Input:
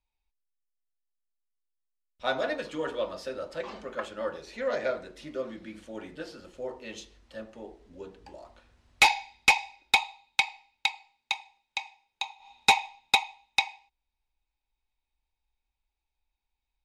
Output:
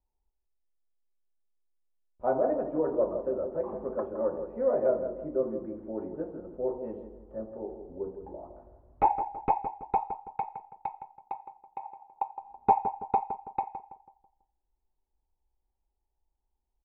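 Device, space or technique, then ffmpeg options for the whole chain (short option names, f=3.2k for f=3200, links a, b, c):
under water: -filter_complex "[0:a]asettb=1/sr,asplit=3[a][b][c];[a]atrim=end=11.834[d];[b]atrim=start=11.83:end=12.23,asetpts=PTS-STARTPTS,afade=t=in:d=0.004:c=qsin,afade=t=out:st=0.396:d=0.004:c=qsin,equalizer=f=850:t=o:w=2.6:g=7.5[e];[c]atrim=start=12.226[f];[d][e]acrossfade=d=0.004:c1=hsin:c2=qsin[g];[g][f]acrossfade=d=0.004:c1=qsin:c2=hsin,lowpass=f=910:w=0.5412,lowpass=f=910:w=1.3066,equalizer=f=380:t=o:w=0.28:g=6,asplit=2[h][i];[i]adelay=164,lowpass=f=1.4k:p=1,volume=-8.5dB,asplit=2[j][k];[k]adelay=164,lowpass=f=1.4k:p=1,volume=0.43,asplit=2[l][m];[m]adelay=164,lowpass=f=1.4k:p=1,volume=0.43,asplit=2[n][o];[o]adelay=164,lowpass=f=1.4k:p=1,volume=0.43,asplit=2[p][q];[q]adelay=164,lowpass=f=1.4k:p=1,volume=0.43[r];[h][j][l][n][p][r]amix=inputs=6:normalize=0,volume=3.5dB"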